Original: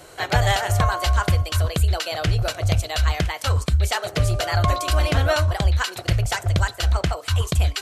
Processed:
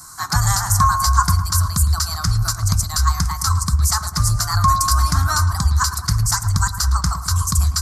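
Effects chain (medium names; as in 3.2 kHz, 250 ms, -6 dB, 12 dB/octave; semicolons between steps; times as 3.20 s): FFT filter 230 Hz 0 dB, 520 Hz -30 dB, 1.1 kHz +10 dB, 2.9 kHz -22 dB, 5 kHz +11 dB; on a send: filtered feedback delay 109 ms, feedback 69%, low-pass 2.4 kHz, level -11.5 dB; on the sum: trim +1.5 dB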